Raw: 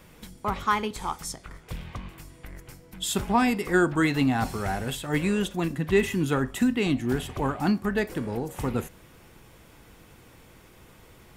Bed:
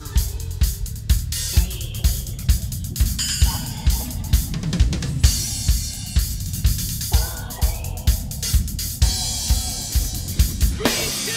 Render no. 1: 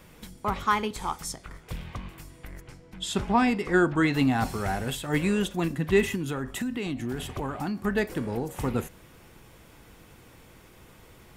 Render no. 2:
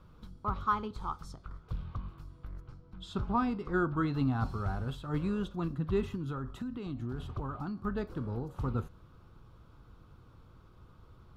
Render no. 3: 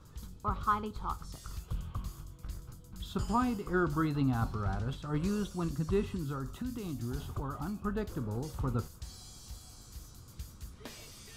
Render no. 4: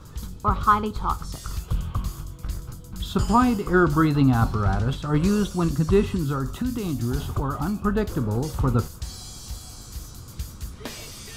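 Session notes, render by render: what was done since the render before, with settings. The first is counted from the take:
0:02.61–0:04.13: high-frequency loss of the air 63 metres; 0:06.15–0:07.82: downward compressor, threshold −27 dBFS
drawn EQ curve 110 Hz 0 dB, 200 Hz −7 dB, 360 Hz −9 dB, 770 Hz −12 dB, 1,300 Hz −2 dB, 1,900 Hz −23 dB, 4,100 Hz −12 dB, 7,900 Hz −26 dB
mix in bed −28 dB
level +11.5 dB

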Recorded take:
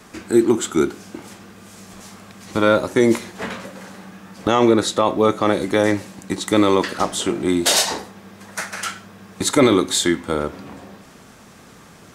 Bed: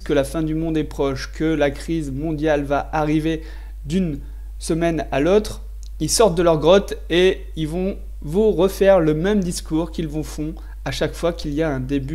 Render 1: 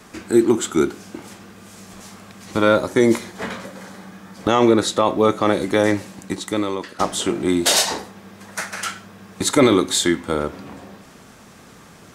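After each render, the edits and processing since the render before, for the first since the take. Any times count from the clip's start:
0:02.76–0:04.45: notch filter 2,700 Hz
0:06.23–0:06.99: fade out quadratic, to −11.5 dB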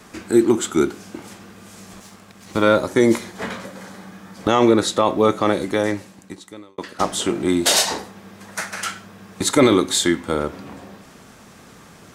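0:01.99–0:02.62: mu-law and A-law mismatch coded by A
0:05.38–0:06.78: fade out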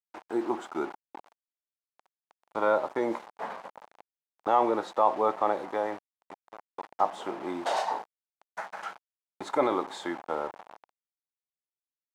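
bit reduction 5 bits
resonant band-pass 830 Hz, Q 2.8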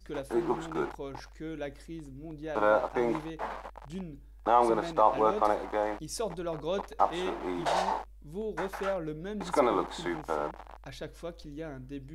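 mix in bed −19.5 dB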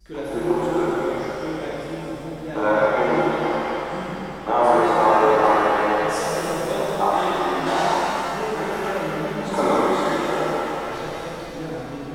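reverb with rising layers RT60 3.2 s, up +7 semitones, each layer −8 dB, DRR −8.5 dB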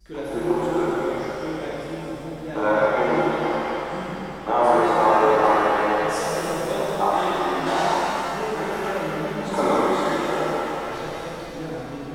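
level −1 dB

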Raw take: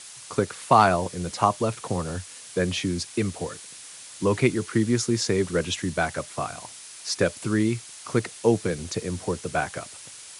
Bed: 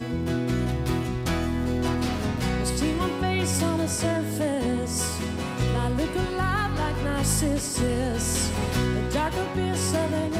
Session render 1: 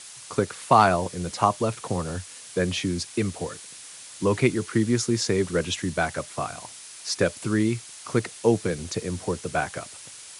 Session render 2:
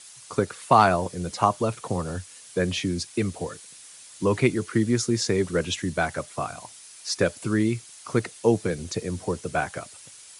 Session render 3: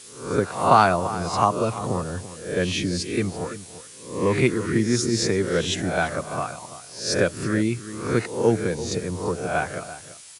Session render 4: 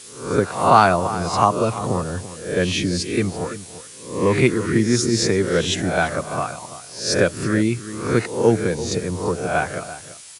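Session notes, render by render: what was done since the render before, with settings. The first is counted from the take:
no processing that can be heard
broadband denoise 6 dB, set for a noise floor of −44 dBFS
peak hold with a rise ahead of every peak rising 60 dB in 0.52 s; slap from a distant wall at 58 metres, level −14 dB
level +3.5 dB; brickwall limiter −1 dBFS, peak gain reduction 2.5 dB

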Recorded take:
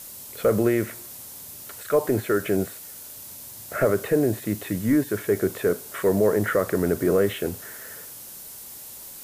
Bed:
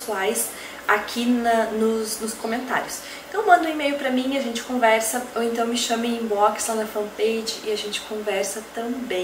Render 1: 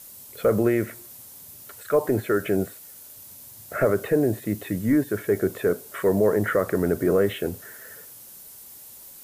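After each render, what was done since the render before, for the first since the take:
broadband denoise 6 dB, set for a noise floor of −41 dBFS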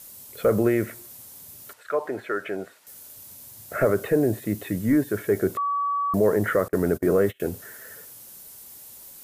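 0:01.73–0:02.87: resonant band-pass 1,400 Hz, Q 0.6
0:05.57–0:06.14: beep over 1,140 Hz −22 dBFS
0:06.68–0:07.40: noise gate −29 dBFS, range −29 dB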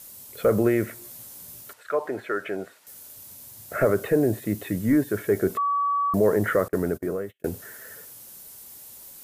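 0:01.00–0:01.61: double-tracking delay 17 ms −3.5 dB
0:05.47–0:06.10: comb filter 4.6 ms, depth 45%
0:06.63–0:07.44: fade out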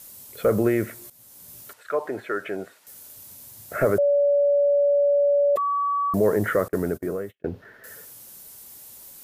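0:01.10–0:01.63: fade in, from −14 dB
0:03.98–0:05.56: beep over 572 Hz −16 dBFS
0:07.35–0:07.84: high-frequency loss of the air 310 metres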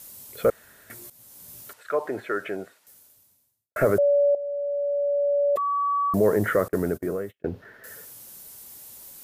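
0:00.50–0:00.90: fill with room tone
0:02.46–0:03.76: fade out quadratic
0:04.35–0:05.95: fade in, from −13 dB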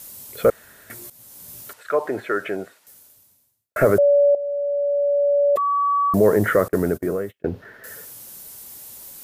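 level +4.5 dB

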